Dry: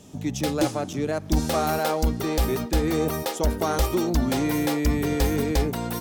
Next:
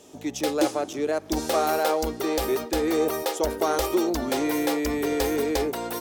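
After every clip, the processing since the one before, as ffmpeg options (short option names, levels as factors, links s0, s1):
-af "lowshelf=f=250:t=q:w=1.5:g=-12"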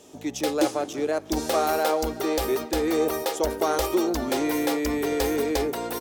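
-filter_complex "[0:a]asplit=2[s0][s1];[s1]adelay=367.3,volume=0.141,highshelf=f=4000:g=-8.27[s2];[s0][s2]amix=inputs=2:normalize=0"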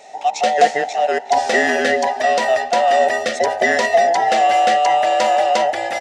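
-af "afftfilt=real='real(if(between(b,1,1008),(2*floor((b-1)/48)+1)*48-b,b),0)':imag='imag(if(between(b,1,1008),(2*floor((b-1)/48)+1)*48-b,b),0)*if(between(b,1,1008),-1,1)':win_size=2048:overlap=0.75,highpass=280,equalizer=f=320:t=q:w=4:g=-6,equalizer=f=780:t=q:w=4:g=8,equalizer=f=1900:t=q:w=4:g=8,equalizer=f=2700:t=q:w=4:g=4,lowpass=f=7300:w=0.5412,lowpass=f=7300:w=1.3066,volume=2"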